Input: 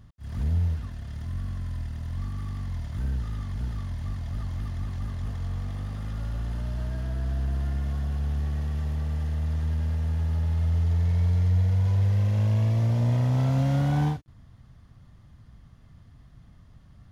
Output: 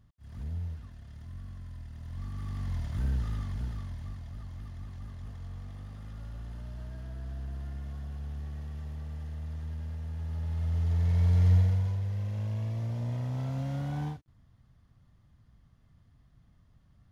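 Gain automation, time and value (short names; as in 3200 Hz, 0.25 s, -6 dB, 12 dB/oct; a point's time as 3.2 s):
1.85 s -11 dB
2.7 s -1 dB
3.32 s -1 dB
4.35 s -10.5 dB
10.11 s -10.5 dB
11.53 s +1 dB
12.01 s -10 dB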